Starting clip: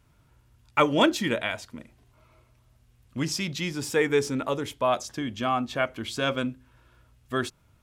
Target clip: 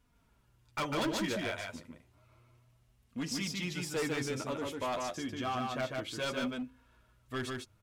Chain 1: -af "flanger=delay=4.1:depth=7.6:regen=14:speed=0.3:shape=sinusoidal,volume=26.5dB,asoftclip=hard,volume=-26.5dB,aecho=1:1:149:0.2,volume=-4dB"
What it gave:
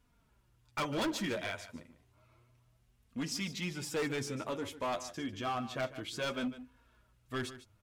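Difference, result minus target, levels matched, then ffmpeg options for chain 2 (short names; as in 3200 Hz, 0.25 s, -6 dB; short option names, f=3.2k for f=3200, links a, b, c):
echo-to-direct -11 dB
-af "flanger=delay=4.1:depth=7.6:regen=14:speed=0.3:shape=sinusoidal,volume=26.5dB,asoftclip=hard,volume=-26.5dB,aecho=1:1:149:0.708,volume=-4dB"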